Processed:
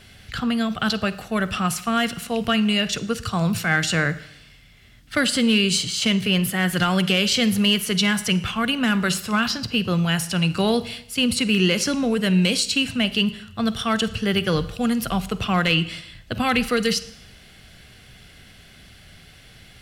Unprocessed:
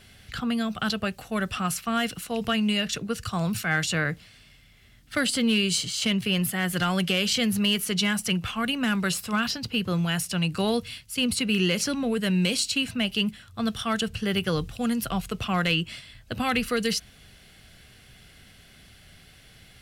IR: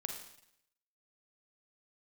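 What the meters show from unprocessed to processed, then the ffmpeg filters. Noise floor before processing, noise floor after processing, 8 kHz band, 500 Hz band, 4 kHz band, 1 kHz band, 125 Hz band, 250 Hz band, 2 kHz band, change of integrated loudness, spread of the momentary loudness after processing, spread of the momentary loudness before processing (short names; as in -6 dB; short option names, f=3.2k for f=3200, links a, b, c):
-54 dBFS, -49 dBFS, +3.0 dB, +5.0 dB, +4.5 dB, +5.0 dB, +5.0 dB, +5.0 dB, +5.0 dB, +4.5 dB, 7 LU, 7 LU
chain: -filter_complex "[0:a]asplit=2[a][b];[1:a]atrim=start_sample=2205,lowpass=8.6k[c];[b][c]afir=irnorm=-1:irlink=0,volume=-6.5dB[d];[a][d]amix=inputs=2:normalize=0,volume=2dB"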